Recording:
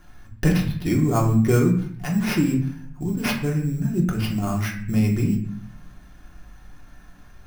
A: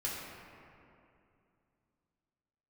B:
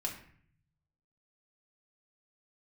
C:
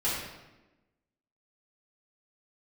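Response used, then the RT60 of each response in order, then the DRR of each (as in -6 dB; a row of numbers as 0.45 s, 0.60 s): B; 2.6 s, 0.55 s, 1.1 s; -7.0 dB, -1.5 dB, -9.0 dB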